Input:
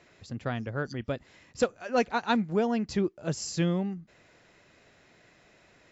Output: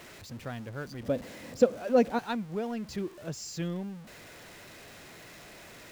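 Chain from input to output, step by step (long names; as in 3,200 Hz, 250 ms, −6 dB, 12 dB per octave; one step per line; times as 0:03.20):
converter with a step at zero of −36.5 dBFS
0:01.03–0:02.19: hollow resonant body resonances 240/510 Hz, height 12 dB, ringing for 20 ms
level −8 dB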